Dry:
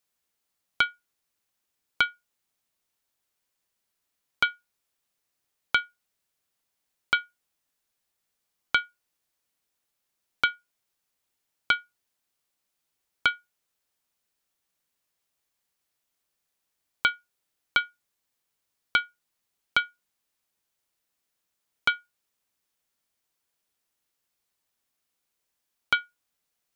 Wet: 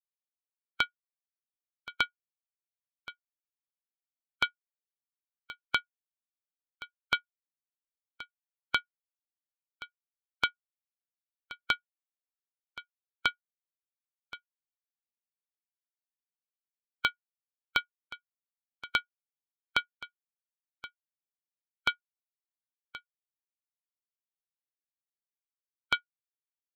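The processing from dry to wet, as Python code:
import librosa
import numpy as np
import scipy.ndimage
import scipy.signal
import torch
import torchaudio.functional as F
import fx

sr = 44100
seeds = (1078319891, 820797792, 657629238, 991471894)

p1 = fx.bin_expand(x, sr, power=2.0)
p2 = fx.dynamic_eq(p1, sr, hz=1400.0, q=0.86, threshold_db=-35.0, ratio=4.0, max_db=-5)
y = p2 + fx.echo_single(p2, sr, ms=1075, db=-16.5, dry=0)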